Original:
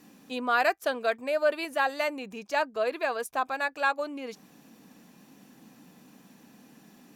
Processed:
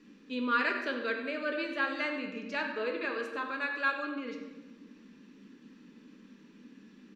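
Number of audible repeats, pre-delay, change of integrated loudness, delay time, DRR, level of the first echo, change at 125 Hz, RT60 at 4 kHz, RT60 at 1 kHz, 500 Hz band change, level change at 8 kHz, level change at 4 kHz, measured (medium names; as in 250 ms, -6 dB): 1, 4 ms, -4.5 dB, 96 ms, 2.0 dB, -12.5 dB, no reading, 0.85 s, 1.1 s, -7.5 dB, under -15 dB, -3.5 dB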